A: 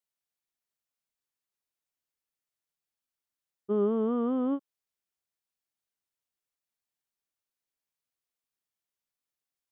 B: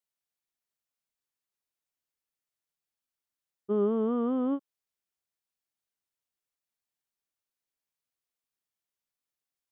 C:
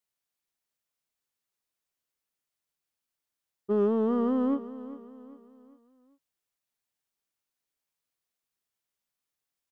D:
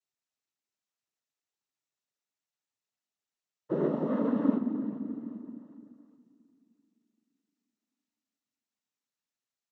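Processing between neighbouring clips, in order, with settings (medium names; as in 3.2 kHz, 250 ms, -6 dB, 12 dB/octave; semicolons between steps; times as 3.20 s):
no audible change
in parallel at -9 dB: hard clipper -28 dBFS, distortion -11 dB; on the sum: feedback delay 398 ms, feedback 42%, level -15 dB
on a send at -10 dB: doubling 20 ms -10.5 dB + reverberation RT60 2.7 s, pre-delay 4 ms; on the sum: noise-vocoded speech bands 12; trim -4 dB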